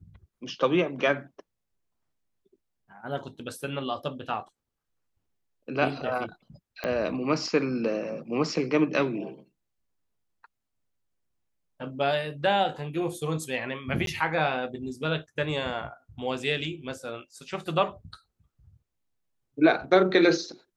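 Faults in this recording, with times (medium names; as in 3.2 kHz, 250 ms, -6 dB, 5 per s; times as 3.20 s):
6.84 s: pop -16 dBFS
14.06–14.07 s: dropout 12 ms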